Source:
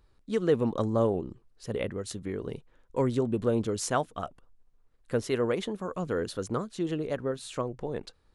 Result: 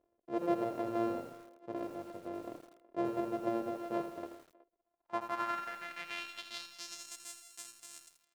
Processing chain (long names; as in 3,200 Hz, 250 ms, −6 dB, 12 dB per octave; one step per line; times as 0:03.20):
samples sorted by size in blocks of 128 samples
band-pass filter sweep 510 Hz → 7,900 Hz, 0:04.62–0:07.19
far-end echo of a speakerphone 370 ms, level −20 dB
feedback echo at a low word length 82 ms, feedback 55%, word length 9 bits, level −8.5 dB